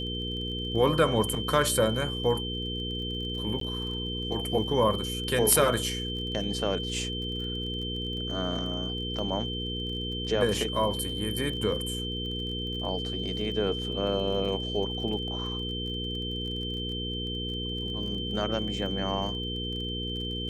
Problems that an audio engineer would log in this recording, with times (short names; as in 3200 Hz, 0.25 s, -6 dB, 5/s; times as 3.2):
crackle 31/s -38 dBFS
hum 60 Hz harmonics 8 -35 dBFS
tone 3100 Hz -34 dBFS
3.6–3.61 gap 13 ms